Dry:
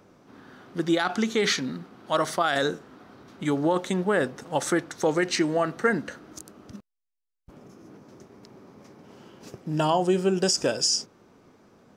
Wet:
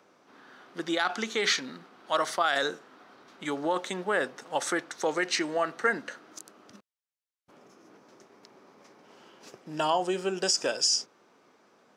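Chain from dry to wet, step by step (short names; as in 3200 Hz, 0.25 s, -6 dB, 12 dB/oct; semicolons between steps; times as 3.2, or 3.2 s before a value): weighting filter A; gain -1.5 dB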